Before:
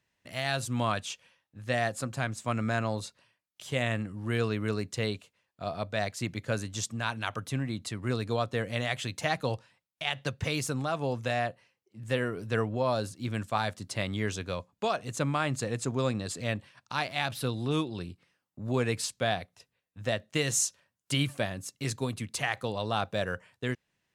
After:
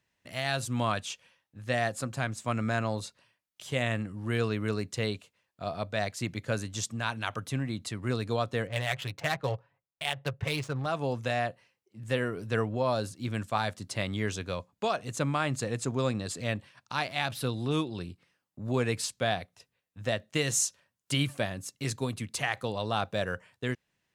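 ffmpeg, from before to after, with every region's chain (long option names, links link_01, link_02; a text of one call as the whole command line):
ffmpeg -i in.wav -filter_complex "[0:a]asettb=1/sr,asplit=3[link_01][link_02][link_03];[link_01]atrim=end=8.674[link_04];[link_02]atrim=start=8.67:end=10.86,asetpts=PTS-STARTPTS,afade=type=in:duration=0.004:curve=qsin,afade=type=out:start_time=2.186:duration=0.004:curve=qsin,equalizer=frequency=240:width=2:gain=-10.5,aecho=1:1:7.2:0.4,atrim=end_sample=96579,adynamicsmooth=sensitivity=7.5:basefreq=1200[link_05];[link_03]atrim=start=10.856[link_06];[link_04][link_05]acrossfade=duration=0.004:curve1=hsin:curve2=qsin[link_07];[link_07][link_06]acrossfade=duration=0.004:curve1=qsin:curve2=hsin" out.wav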